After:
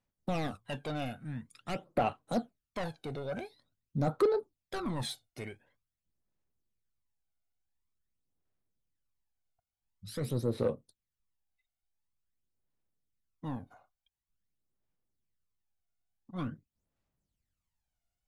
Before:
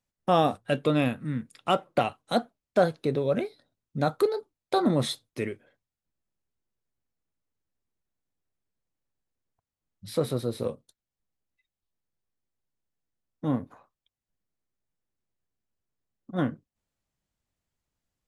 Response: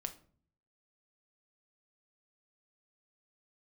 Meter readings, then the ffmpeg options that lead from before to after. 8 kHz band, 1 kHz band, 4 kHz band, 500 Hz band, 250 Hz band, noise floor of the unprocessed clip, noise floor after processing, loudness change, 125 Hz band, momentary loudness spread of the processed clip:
-6.0 dB, -9.5 dB, -9.0 dB, -8.0 dB, -8.5 dB, under -85 dBFS, under -85 dBFS, -8.0 dB, -5.5 dB, 14 LU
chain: -af "asoftclip=type=tanh:threshold=-22dB,aphaser=in_gain=1:out_gain=1:delay=1.4:decay=0.67:speed=0.47:type=sinusoidal,volume=-7.5dB"

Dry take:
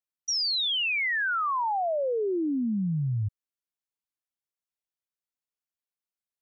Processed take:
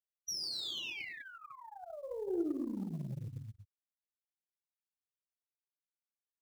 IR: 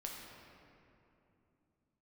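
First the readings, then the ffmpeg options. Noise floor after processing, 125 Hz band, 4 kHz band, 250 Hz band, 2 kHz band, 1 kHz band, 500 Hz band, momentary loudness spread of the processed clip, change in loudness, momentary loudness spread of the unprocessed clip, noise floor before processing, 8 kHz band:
under -85 dBFS, -13.5 dB, -13.0 dB, -9.5 dB, -18.5 dB, -23.5 dB, -12.0 dB, 15 LU, -13.0 dB, 5 LU, under -85 dBFS, n/a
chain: -filter_complex "[0:a]acrossover=split=370|3000[a][b][c];[b]acompressor=threshold=-47dB:ratio=4[d];[a][d][c]amix=inputs=3:normalize=0,asplit=2[e][f];[f]adelay=233.2,volume=-8dB,highshelf=f=4k:g=-5.25[g];[e][g]amix=inputs=2:normalize=0[h];[1:a]atrim=start_sample=2205,afade=t=out:st=0.2:d=0.01,atrim=end_sample=9261[i];[h][i]afir=irnorm=-1:irlink=0,afftfilt=real='re*gte(hypot(re,im),0.0501)':imag='im*gte(hypot(re,im),0.0501)':win_size=1024:overlap=0.75,aeval=exprs='0.119*(cos(1*acos(clip(val(0)/0.119,-1,1)))-cos(1*PI/2))+0.0168*(cos(2*acos(clip(val(0)/0.119,-1,1)))-cos(2*PI/2))+0.0075*(cos(3*acos(clip(val(0)/0.119,-1,1)))-cos(3*PI/2))+0.00531*(cos(4*acos(clip(val(0)/0.119,-1,1)))-cos(4*PI/2))+0.00422*(cos(8*acos(clip(val(0)/0.119,-1,1)))-cos(8*PI/2))':c=same,acrusher=bits=8:mode=log:mix=0:aa=0.000001,acompressor=threshold=-34dB:ratio=6,highpass=f=100:p=1,equalizer=f=350:t=o:w=0.38:g=8.5,volume=-2dB"

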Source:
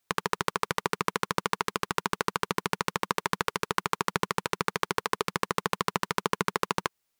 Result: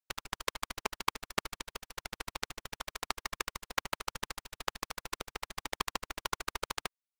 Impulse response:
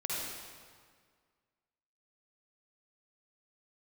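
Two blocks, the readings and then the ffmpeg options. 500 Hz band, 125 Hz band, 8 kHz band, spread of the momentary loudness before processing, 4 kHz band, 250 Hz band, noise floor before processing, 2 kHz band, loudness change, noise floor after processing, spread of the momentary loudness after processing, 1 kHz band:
-12.5 dB, -14.0 dB, -4.5 dB, 2 LU, -4.5 dB, -13.5 dB, -79 dBFS, -8.5 dB, -8.5 dB, under -85 dBFS, 7 LU, -11.0 dB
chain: -af "afftfilt=real='hypot(re,im)*cos(2*PI*random(0))':imag='hypot(re,im)*sin(2*PI*random(1))':win_size=512:overlap=0.75,equalizer=f=200:w=0.7:g=-10.5,aeval=exprs='0.126*(cos(1*acos(clip(val(0)/0.126,-1,1)))-cos(1*PI/2))+0.0447*(cos(3*acos(clip(val(0)/0.126,-1,1)))-cos(3*PI/2))+0.00891*(cos(4*acos(clip(val(0)/0.126,-1,1)))-cos(4*PI/2))+0.00891*(cos(6*acos(clip(val(0)/0.126,-1,1)))-cos(6*PI/2))':c=same,volume=8.5dB"

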